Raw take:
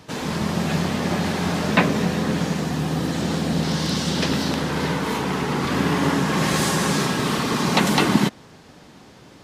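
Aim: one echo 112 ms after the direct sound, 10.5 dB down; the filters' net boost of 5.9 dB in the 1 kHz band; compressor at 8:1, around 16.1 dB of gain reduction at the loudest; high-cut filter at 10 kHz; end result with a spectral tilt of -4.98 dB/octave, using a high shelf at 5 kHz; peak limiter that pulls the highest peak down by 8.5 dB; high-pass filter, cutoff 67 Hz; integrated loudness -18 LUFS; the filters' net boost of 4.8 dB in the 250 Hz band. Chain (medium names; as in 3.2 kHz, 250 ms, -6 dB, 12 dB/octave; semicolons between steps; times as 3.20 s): high-pass 67 Hz; low-pass 10 kHz; peaking EQ 250 Hz +6 dB; peaking EQ 1 kHz +6.5 dB; treble shelf 5 kHz +5.5 dB; compression 8:1, threshold -23 dBFS; peak limiter -19 dBFS; delay 112 ms -10.5 dB; trim +10 dB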